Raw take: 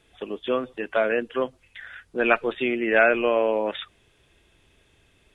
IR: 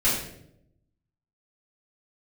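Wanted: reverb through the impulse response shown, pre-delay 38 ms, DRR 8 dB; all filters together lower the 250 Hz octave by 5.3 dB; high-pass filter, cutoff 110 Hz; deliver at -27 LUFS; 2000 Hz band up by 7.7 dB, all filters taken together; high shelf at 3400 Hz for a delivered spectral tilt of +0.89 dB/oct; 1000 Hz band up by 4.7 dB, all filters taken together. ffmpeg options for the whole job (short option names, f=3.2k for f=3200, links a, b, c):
-filter_complex "[0:a]highpass=110,equalizer=f=250:t=o:g=-8.5,equalizer=f=1k:t=o:g=4,equalizer=f=2k:t=o:g=7.5,highshelf=f=3.4k:g=6.5,asplit=2[a][b];[1:a]atrim=start_sample=2205,adelay=38[c];[b][c]afir=irnorm=-1:irlink=0,volume=-21.5dB[d];[a][d]amix=inputs=2:normalize=0,volume=-8dB"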